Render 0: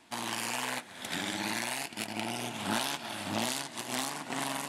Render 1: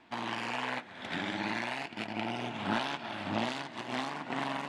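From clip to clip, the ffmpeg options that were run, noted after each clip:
-af "lowpass=2.9k,volume=1dB"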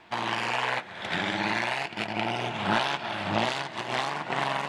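-af "equalizer=f=260:w=4.9:g=-14.5,volume=7.5dB"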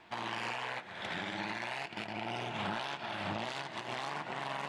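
-af "alimiter=limit=-22.5dB:level=0:latency=1:release=113,volume=-4.5dB"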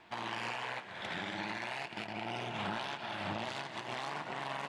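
-af "aecho=1:1:192:0.188,volume=-1dB"

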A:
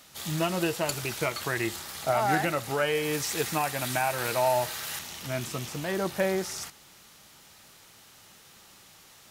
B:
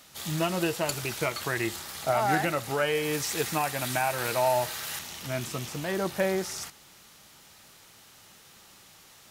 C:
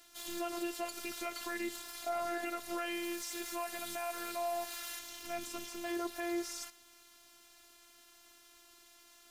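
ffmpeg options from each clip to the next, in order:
-af anull
-af "afftfilt=real='hypot(re,im)*cos(PI*b)':imag='0':win_size=512:overlap=0.75,alimiter=limit=-20.5dB:level=0:latency=1:release=107,volume=-3.5dB"

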